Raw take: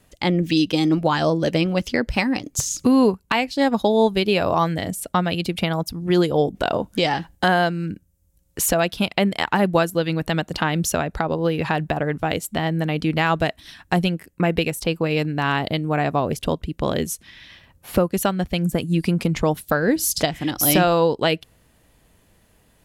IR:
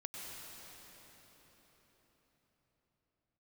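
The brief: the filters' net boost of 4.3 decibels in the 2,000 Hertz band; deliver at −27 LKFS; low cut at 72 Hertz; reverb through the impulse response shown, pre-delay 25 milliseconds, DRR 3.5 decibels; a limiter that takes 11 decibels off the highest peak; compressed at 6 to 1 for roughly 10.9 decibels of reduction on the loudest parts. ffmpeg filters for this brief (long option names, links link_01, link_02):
-filter_complex "[0:a]highpass=72,equalizer=frequency=2000:width_type=o:gain=5.5,acompressor=threshold=-24dB:ratio=6,alimiter=limit=-18.5dB:level=0:latency=1,asplit=2[link_01][link_02];[1:a]atrim=start_sample=2205,adelay=25[link_03];[link_02][link_03]afir=irnorm=-1:irlink=0,volume=-2.5dB[link_04];[link_01][link_04]amix=inputs=2:normalize=0,volume=1.5dB"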